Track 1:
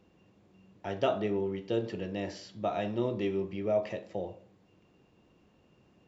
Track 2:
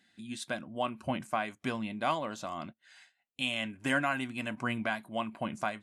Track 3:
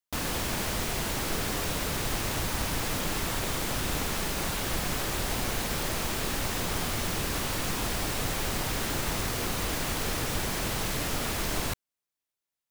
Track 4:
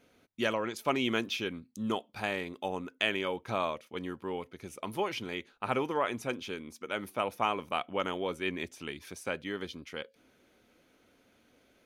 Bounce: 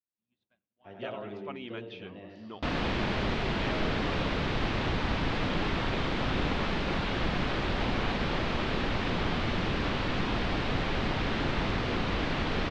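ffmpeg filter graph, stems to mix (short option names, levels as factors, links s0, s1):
-filter_complex "[0:a]volume=0.237,asplit=2[s0][s1];[s1]volume=0.668[s2];[1:a]acontrast=25,equalizer=f=470:w=0.32:g=-5,acompressor=threshold=0.00112:ratio=1.5,volume=0.126,asplit=2[s3][s4];[s4]volume=0.15[s5];[2:a]equalizer=f=230:w=1.1:g=3.5,adelay=2500,volume=1.12[s6];[3:a]adelay=600,volume=0.251[s7];[s2][s5]amix=inputs=2:normalize=0,aecho=0:1:97|194|291|388|485|582|679:1|0.51|0.26|0.133|0.0677|0.0345|0.0176[s8];[s0][s3][s6][s7][s8]amix=inputs=5:normalize=0,agate=range=0.0224:threshold=0.00316:ratio=3:detection=peak,lowpass=f=3800:w=0.5412,lowpass=f=3800:w=1.3066"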